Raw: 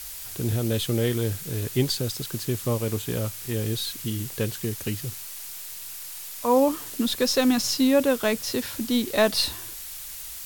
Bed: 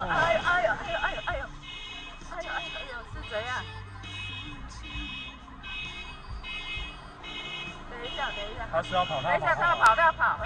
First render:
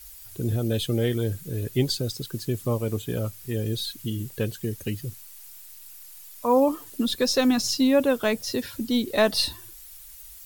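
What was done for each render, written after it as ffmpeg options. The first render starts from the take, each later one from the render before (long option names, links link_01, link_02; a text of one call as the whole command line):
ffmpeg -i in.wav -af "afftdn=noise_reduction=12:noise_floor=-38" out.wav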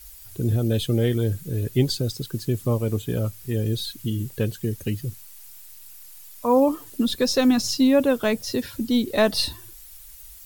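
ffmpeg -i in.wav -af "lowshelf=frequency=350:gain=4.5" out.wav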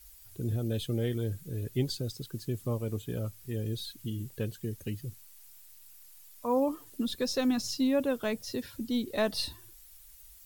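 ffmpeg -i in.wav -af "volume=-9.5dB" out.wav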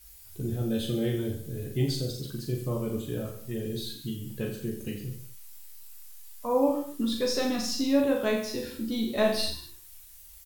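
ffmpeg -i in.wav -filter_complex "[0:a]asplit=2[link_01][link_02];[link_02]adelay=14,volume=-4.5dB[link_03];[link_01][link_03]amix=inputs=2:normalize=0,aecho=1:1:40|84|132.4|185.6|244.2:0.631|0.398|0.251|0.158|0.1" out.wav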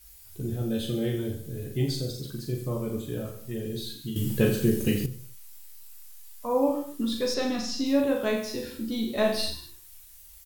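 ffmpeg -i in.wav -filter_complex "[0:a]asettb=1/sr,asplit=3[link_01][link_02][link_03];[link_01]atrim=end=1.884[link_04];[link_02]atrim=start=1.88:end=3.13,asetpts=PTS-STARTPTS,afade=type=in:duration=0.004:curve=qsin,afade=type=out:start_time=1.246:duration=0.004:curve=qsin,bandreject=frequency=2900:width=12[link_05];[link_03]atrim=start=3.126[link_06];[link_04][link_05]acrossfade=duration=0.004:curve1=hsin:curve2=qsin[link_07];[link_07][link_06]acrossfade=duration=0.004:curve1=qsin:curve2=hsin,asettb=1/sr,asplit=3[link_08][link_09][link_10];[link_08]atrim=end=7.344[link_11];[link_09]atrim=start=7.34:end=7.86,asetpts=PTS-STARTPTS,afade=type=in:duration=0.004:curve=qsin,afade=type=out:start_time=0.516:duration=0.004:curve=qsin,acrossover=split=7000[link_12][link_13];[link_13]acompressor=threshold=-53dB:ratio=4:attack=1:release=60[link_14];[link_12][link_14]amix=inputs=2:normalize=0[link_15];[link_10]atrim=start=7.856[link_16];[link_11][link_15]acrossfade=duration=0.004:curve1=hsin:curve2=qsin[link_17];[link_17][link_16]acrossfade=duration=0.004:curve1=qsin:curve2=hsin,asplit=3[link_18][link_19][link_20];[link_18]atrim=end=4.162[link_21];[link_19]atrim=start=4.158:end=5.062,asetpts=PTS-STARTPTS,volume=10.5dB[link_22];[link_20]atrim=start=5.058[link_23];[link_21][link_22]acrossfade=duration=0.004:curve1=hsin:curve2=hsin[link_24];[link_24][link_23]acrossfade=duration=0.004:curve1=hsin:curve2=hsin" out.wav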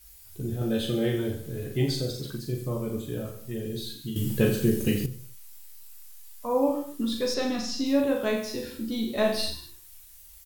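ffmpeg -i in.wav -filter_complex "[0:a]asettb=1/sr,asplit=3[link_01][link_02][link_03];[link_01]atrim=end=0.614[link_04];[link_02]atrim=start=0.61:end=2.38,asetpts=PTS-STARTPTS,afade=type=in:duration=0.004:curve=qsin,afade=type=out:start_time=1.766:duration=0.004:curve=qsin,equalizer=frequency=1200:width_type=o:width=3:gain=6.5[link_05];[link_03]atrim=start=2.376[link_06];[link_04][link_05]acrossfade=duration=0.004:curve1=hsin:curve2=qsin[link_07];[link_07][link_06]acrossfade=duration=0.004:curve1=qsin:curve2=hsin" out.wav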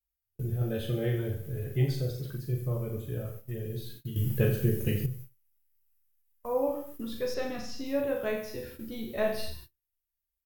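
ffmpeg -i in.wav -af "agate=range=-35dB:threshold=-41dB:ratio=16:detection=peak,equalizer=frequency=125:width_type=o:width=1:gain=4,equalizer=frequency=250:width_type=o:width=1:gain=-11,equalizer=frequency=1000:width_type=o:width=1:gain=-6,equalizer=frequency=4000:width_type=o:width=1:gain=-10,equalizer=frequency=8000:width_type=o:width=1:gain=-10" out.wav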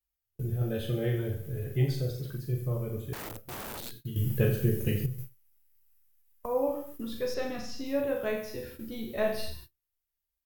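ffmpeg -i in.wav -filter_complex "[0:a]asettb=1/sr,asplit=3[link_01][link_02][link_03];[link_01]atrim=end=3.134[link_04];[link_02]atrim=start=3.13:end=4.02,asetpts=PTS-STARTPTS,afade=type=in:duration=0.004:curve=qsin,afade=type=out:start_time=0.886:duration=0.004:curve=qsin,aeval=exprs='(mod(56.2*val(0)+1,2)-1)/56.2':channel_layout=same[link_05];[link_03]atrim=start=4.016[link_06];[link_04][link_05]acrossfade=duration=0.004:curve1=hsin:curve2=qsin[link_07];[link_07][link_06]acrossfade=duration=0.004:curve1=qsin:curve2=hsin,asettb=1/sr,asplit=3[link_08][link_09][link_10];[link_08]atrim=end=5.184[link_11];[link_09]atrim=start=5.18:end=6.46,asetpts=PTS-STARTPTS,afade=type=in:duration=0.004:curve=qsin,afade=type=out:start_time=1.276:duration=0.004:curve=qsin,acontrast=48[link_12];[link_10]atrim=start=6.456[link_13];[link_11][link_12]acrossfade=duration=0.004:curve1=hsin:curve2=qsin[link_14];[link_14][link_13]acrossfade=duration=0.004:curve1=qsin:curve2=hsin" out.wav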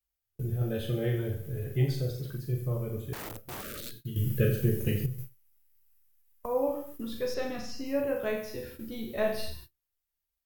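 ffmpeg -i in.wav -filter_complex "[0:a]asplit=3[link_01][link_02][link_03];[link_01]afade=type=out:start_time=3.61:duration=0.02[link_04];[link_02]asuperstop=centerf=860:order=20:qfactor=1.7,afade=type=in:start_time=3.61:duration=0.02,afade=type=out:start_time=4.61:duration=0.02[link_05];[link_03]afade=type=in:start_time=4.61:duration=0.02[link_06];[link_04][link_05][link_06]amix=inputs=3:normalize=0,asettb=1/sr,asplit=3[link_07][link_08][link_09];[link_07]atrim=end=7.724[link_10];[link_08]atrim=start=7.72:end=8.2,asetpts=PTS-STARTPTS,afade=type=in:duration=0.004:curve=qsin,afade=type=out:start_time=0.476:duration=0.004:curve=qsin,asuperstop=centerf=3600:order=4:qfactor=3.9[link_11];[link_09]atrim=start=8.196[link_12];[link_10][link_11]acrossfade=duration=0.004:curve1=hsin:curve2=qsin[link_13];[link_13][link_12]acrossfade=duration=0.004:curve1=qsin:curve2=hsin" out.wav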